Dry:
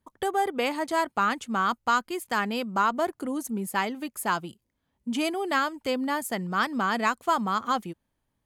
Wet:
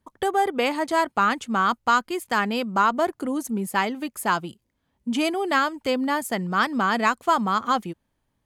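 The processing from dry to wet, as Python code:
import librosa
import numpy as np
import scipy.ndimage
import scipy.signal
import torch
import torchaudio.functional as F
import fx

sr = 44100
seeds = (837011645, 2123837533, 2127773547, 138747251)

y = fx.high_shelf(x, sr, hz=9500.0, db=-5.0)
y = F.gain(torch.from_numpy(y), 4.0).numpy()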